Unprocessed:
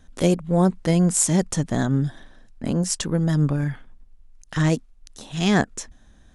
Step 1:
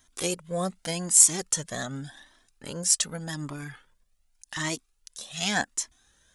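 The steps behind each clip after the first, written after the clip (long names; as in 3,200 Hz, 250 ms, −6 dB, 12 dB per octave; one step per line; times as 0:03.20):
spectral tilt +3.5 dB per octave
flanger whose copies keep moving one way rising 0.86 Hz
level −1.5 dB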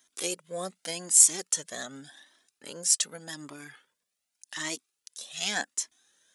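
high-pass filter 340 Hz 12 dB per octave
parametric band 940 Hz −5.5 dB 1.7 octaves
level −1 dB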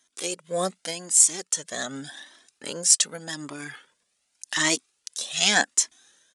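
automatic gain control gain up to 11.5 dB
downsampling to 22,050 Hz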